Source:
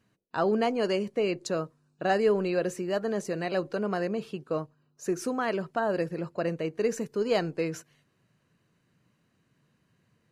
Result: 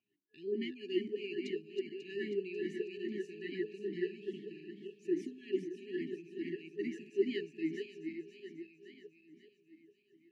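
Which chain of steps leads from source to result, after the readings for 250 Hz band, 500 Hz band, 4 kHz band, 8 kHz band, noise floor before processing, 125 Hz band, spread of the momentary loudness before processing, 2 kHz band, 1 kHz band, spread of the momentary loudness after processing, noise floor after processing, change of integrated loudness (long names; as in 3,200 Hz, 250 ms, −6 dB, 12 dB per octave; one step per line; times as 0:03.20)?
−7.0 dB, −10.0 dB, −8.5 dB, below −20 dB, −72 dBFS, −16.0 dB, 8 LU, −11.5 dB, below −40 dB, 12 LU, −74 dBFS, −10.0 dB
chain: feedback delay that plays each chunk backwards 271 ms, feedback 70%, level −5.5 dB
brick-wall band-stop 430–1,700 Hz
formant filter swept between two vowels a-i 2.4 Hz
level +2.5 dB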